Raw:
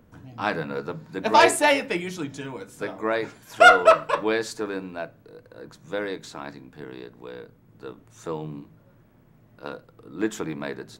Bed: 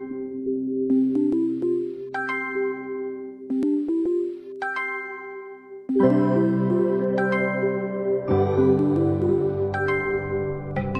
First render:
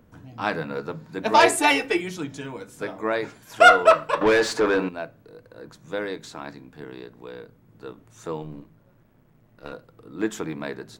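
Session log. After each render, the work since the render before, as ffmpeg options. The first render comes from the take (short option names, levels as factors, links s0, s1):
-filter_complex "[0:a]asettb=1/sr,asplit=3[s0][s1][s2];[s0]atrim=end=1.574[s3];[s1]atrim=start=1.57:end=2.01,asetpts=PTS-STARTPTS,afade=t=in:d=0.004:c=qsin,afade=t=out:st=0.436:d=0.004:c=qsin,aecho=1:1:2.6:0.91,atrim=end_sample=19404[s4];[s2]atrim=start=2.006[s5];[s3][s4]acrossfade=d=0.004:c1=hsin:c2=qsin[s6];[s6][s5]acrossfade=d=0.004:c1=qsin:c2=hsin,asettb=1/sr,asplit=3[s7][s8][s9];[s7]atrim=end=4.214[s10];[s8]atrim=start=4.21:end=4.89,asetpts=PTS-STARTPTS,afade=t=in:d=0.004:c=qsin,afade=t=out:st=0.676:d=0.004:c=qsin,asplit=2[s11][s12];[s12]highpass=f=720:p=1,volume=17.8,asoftclip=type=tanh:threshold=0.335[s13];[s11][s13]amix=inputs=2:normalize=0,lowpass=f=1800:p=1,volume=0.501[s14];[s9]atrim=start=4.886[s15];[s10][s14]acrossfade=d=0.004:c1=hsin:c2=qsin[s16];[s16][s15]acrossfade=d=0.004:c1=qsin:c2=hsin,asettb=1/sr,asplit=3[s17][s18][s19];[s17]atrim=end=8.424[s20];[s18]atrim=start=8.42:end=9.72,asetpts=PTS-STARTPTS,afade=t=in:d=0.004:c=qsin,afade=t=out:st=1.296:d=0.004:c=qsin,aeval=exprs='if(lt(val(0),0),0.447*val(0),val(0))':c=same[s21];[s19]atrim=start=9.716[s22];[s20][s21]acrossfade=d=0.004:c1=hsin:c2=qsin[s23];[s23][s22]acrossfade=d=0.004:c1=qsin:c2=hsin"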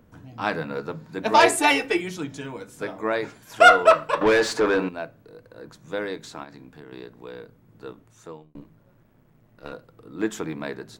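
-filter_complex "[0:a]asplit=3[s0][s1][s2];[s0]afade=t=out:st=6.43:d=0.02[s3];[s1]acompressor=threshold=0.0126:ratio=6:attack=3.2:release=140:knee=1:detection=peak,afade=t=in:st=6.43:d=0.02,afade=t=out:st=6.91:d=0.02[s4];[s2]afade=t=in:st=6.91:d=0.02[s5];[s3][s4][s5]amix=inputs=3:normalize=0,asplit=2[s6][s7];[s6]atrim=end=8.55,asetpts=PTS-STARTPTS,afade=t=out:st=7.89:d=0.66[s8];[s7]atrim=start=8.55,asetpts=PTS-STARTPTS,afade=t=in:d=0.004:c=hsin[s9];[s8][s9]concat=n=2:v=0:a=1"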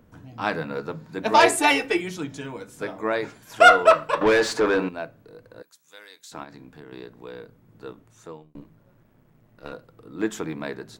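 -filter_complex "[0:a]asettb=1/sr,asplit=3[s0][s1][s2];[s0]atrim=end=5.624[s3];[s1]atrim=start=5.62:end=6.32,asetpts=PTS-STARTPTS,afade=t=in:d=0.004:c=qsin,afade=t=out:st=0.696:d=0.004:c=qsin,aderivative[s4];[s2]atrim=start=6.316[s5];[s3][s4]acrossfade=d=0.004:c1=hsin:c2=qsin[s6];[s6][s5]acrossfade=d=0.004:c1=qsin:c2=hsin"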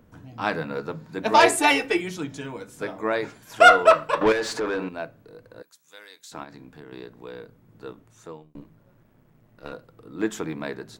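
-filter_complex "[0:a]asettb=1/sr,asplit=3[s0][s1][s2];[s0]atrim=end=4.324[s3];[s1]atrim=start=4.32:end=4.99,asetpts=PTS-STARTPTS,afade=t=in:d=0.004:c=qsin,afade=t=out:st=0.666:d=0.004:c=qsin,acompressor=threshold=0.0398:ratio=2:attack=3.2:release=140:knee=1:detection=peak[s4];[s2]atrim=start=4.986[s5];[s3][s4]acrossfade=d=0.004:c1=hsin:c2=qsin[s6];[s6][s5]acrossfade=d=0.004:c1=qsin:c2=hsin"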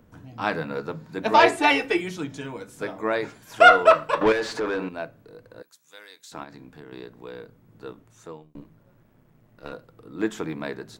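-filter_complex "[0:a]acrossover=split=4800[s0][s1];[s1]acompressor=threshold=0.00708:ratio=4:attack=1:release=60[s2];[s0][s2]amix=inputs=2:normalize=0"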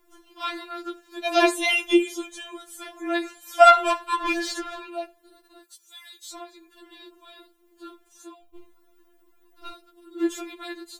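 -af "aexciter=amount=1.7:drive=6.9:freq=2900,afftfilt=real='re*4*eq(mod(b,16),0)':imag='im*4*eq(mod(b,16),0)':win_size=2048:overlap=0.75"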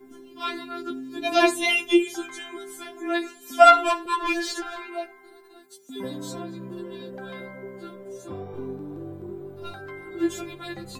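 -filter_complex "[1:a]volume=0.158[s0];[0:a][s0]amix=inputs=2:normalize=0"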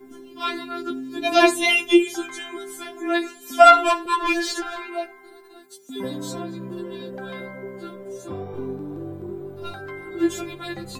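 -af "volume=1.5,alimiter=limit=0.891:level=0:latency=1"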